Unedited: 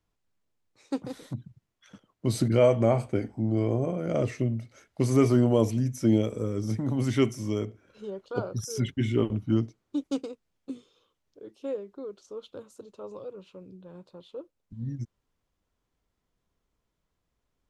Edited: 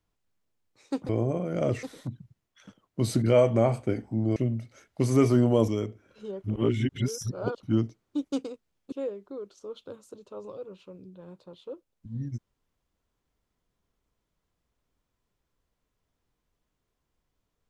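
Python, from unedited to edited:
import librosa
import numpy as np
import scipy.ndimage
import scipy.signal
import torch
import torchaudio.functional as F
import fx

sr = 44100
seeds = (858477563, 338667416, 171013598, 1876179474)

y = fx.edit(x, sr, fx.move(start_s=3.62, length_s=0.74, to_s=1.09),
    fx.cut(start_s=5.68, length_s=1.79),
    fx.reverse_span(start_s=8.23, length_s=1.19),
    fx.cut(start_s=10.71, length_s=0.88), tone=tone)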